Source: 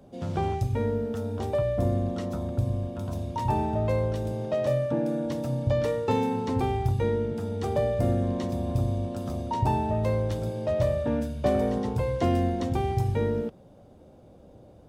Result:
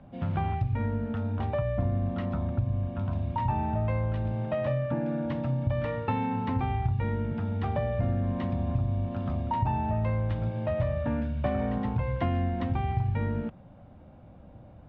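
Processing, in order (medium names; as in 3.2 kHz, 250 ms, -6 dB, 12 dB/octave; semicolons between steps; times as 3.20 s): low-pass 2.7 kHz 24 dB/octave; peaking EQ 420 Hz -14.5 dB 0.91 oct; compression 2.5:1, threshold -31 dBFS, peak gain reduction 7.5 dB; trim +5 dB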